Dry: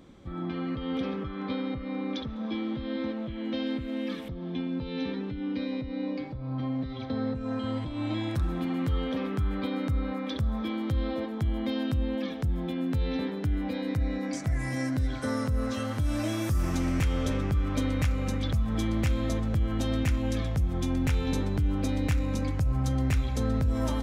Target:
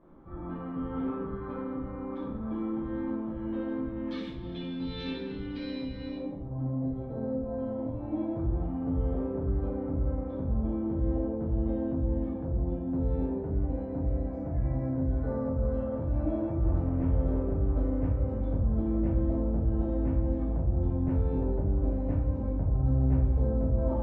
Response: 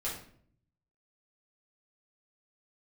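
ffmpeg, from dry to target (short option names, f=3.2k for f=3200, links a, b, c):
-filter_complex "[0:a]asetnsamples=n=441:p=0,asendcmd='4.11 lowpass f 4500;6.16 lowpass f 690',lowpass=f=1.1k:t=q:w=1.9[a];[1:a]atrim=start_sample=2205,asetrate=31752,aresample=44100[b];[a][b]afir=irnorm=-1:irlink=0,volume=-8.5dB"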